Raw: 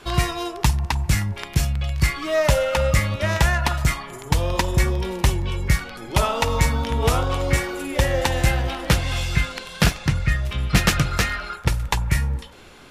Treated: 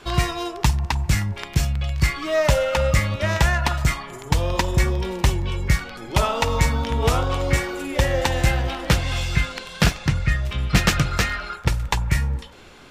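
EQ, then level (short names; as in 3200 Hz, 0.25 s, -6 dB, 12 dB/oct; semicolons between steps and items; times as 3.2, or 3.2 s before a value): bell 11000 Hz -7.5 dB 0.34 oct; 0.0 dB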